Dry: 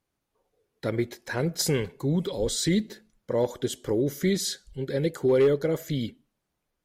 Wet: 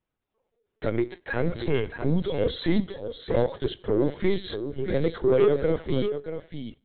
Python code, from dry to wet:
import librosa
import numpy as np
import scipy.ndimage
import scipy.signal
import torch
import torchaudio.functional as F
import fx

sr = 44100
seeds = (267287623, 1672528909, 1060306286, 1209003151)

p1 = fx.rev_schroeder(x, sr, rt60_s=0.54, comb_ms=32, drr_db=20.0)
p2 = fx.leveller(p1, sr, passes=1)
p3 = p2 + fx.echo_single(p2, sr, ms=633, db=-9.0, dry=0)
p4 = fx.lpc_vocoder(p3, sr, seeds[0], excitation='pitch_kept', order=16)
y = p4 * 10.0 ** (-1.0 / 20.0)